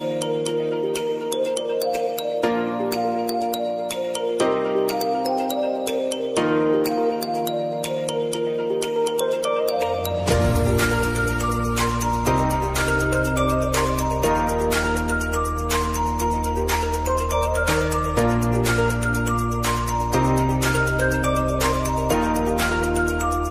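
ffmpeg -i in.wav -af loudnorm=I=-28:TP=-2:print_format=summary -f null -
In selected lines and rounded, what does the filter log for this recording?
Input Integrated:    -21.9 LUFS
Input True Peak:      -7.1 dBTP
Input LRA:             2.3 LU
Input Threshold:     -31.9 LUFS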